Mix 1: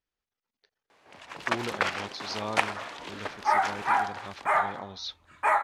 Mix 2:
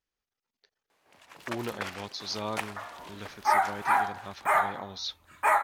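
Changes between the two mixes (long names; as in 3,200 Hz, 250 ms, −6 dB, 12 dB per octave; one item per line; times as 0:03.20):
first sound −9.5 dB
master: remove high-frequency loss of the air 62 metres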